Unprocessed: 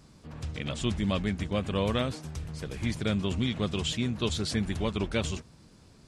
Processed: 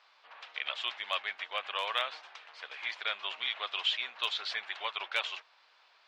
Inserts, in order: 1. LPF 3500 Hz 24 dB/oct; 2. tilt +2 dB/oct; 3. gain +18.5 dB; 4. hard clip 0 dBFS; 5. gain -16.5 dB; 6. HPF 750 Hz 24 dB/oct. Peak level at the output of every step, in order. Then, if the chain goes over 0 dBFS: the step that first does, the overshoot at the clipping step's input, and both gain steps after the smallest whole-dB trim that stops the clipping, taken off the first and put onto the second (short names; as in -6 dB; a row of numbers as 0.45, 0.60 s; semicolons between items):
-15.5, -15.0, +3.5, 0.0, -16.5, -15.0 dBFS; step 3, 3.5 dB; step 3 +14.5 dB, step 5 -12.5 dB